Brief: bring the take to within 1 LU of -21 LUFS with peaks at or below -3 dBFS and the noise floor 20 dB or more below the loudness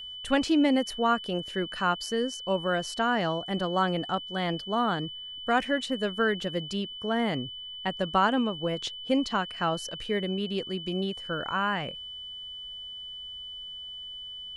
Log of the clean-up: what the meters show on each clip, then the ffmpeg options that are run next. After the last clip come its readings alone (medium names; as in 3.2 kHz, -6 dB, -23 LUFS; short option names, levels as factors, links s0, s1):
steady tone 3 kHz; tone level -38 dBFS; loudness -29.0 LUFS; peak level -11.0 dBFS; loudness target -21.0 LUFS
-> -af "bandreject=f=3000:w=30"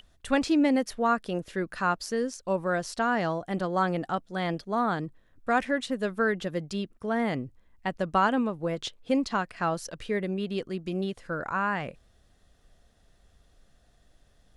steady tone not found; loudness -29.0 LUFS; peak level -11.5 dBFS; loudness target -21.0 LUFS
-> -af "volume=2.51"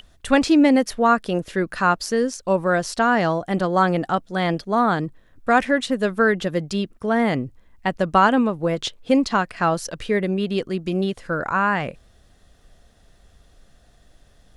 loudness -21.0 LUFS; peak level -3.5 dBFS; noise floor -55 dBFS